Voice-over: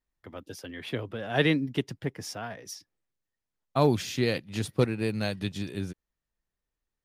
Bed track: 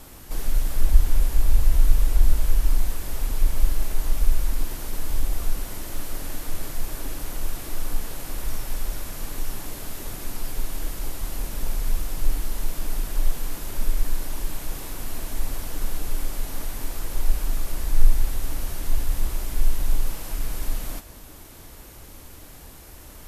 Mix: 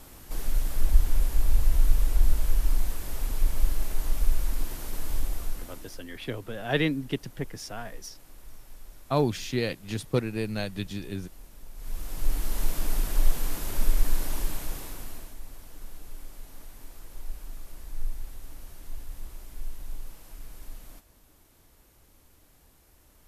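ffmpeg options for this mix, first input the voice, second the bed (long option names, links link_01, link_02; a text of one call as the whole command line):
ffmpeg -i stem1.wav -i stem2.wav -filter_complex "[0:a]adelay=5350,volume=-1.5dB[link_01];[1:a]volume=15dB,afade=type=out:start_time=5.15:duration=0.9:silence=0.177828,afade=type=in:start_time=11.74:duration=0.89:silence=0.112202,afade=type=out:start_time=14.35:duration=1.02:silence=0.16788[link_02];[link_01][link_02]amix=inputs=2:normalize=0" out.wav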